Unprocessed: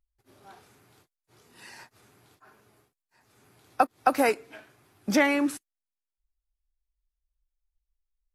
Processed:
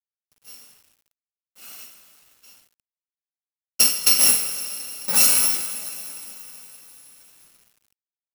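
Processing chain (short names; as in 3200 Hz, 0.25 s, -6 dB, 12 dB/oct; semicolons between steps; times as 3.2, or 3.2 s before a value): FFT order left unsorted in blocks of 128 samples; HPF 220 Hz 24 dB/oct; gate -56 dBFS, range -27 dB; two-slope reverb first 0.57 s, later 3.9 s, from -15 dB, DRR -2.5 dB; companded quantiser 4-bit; gain +2 dB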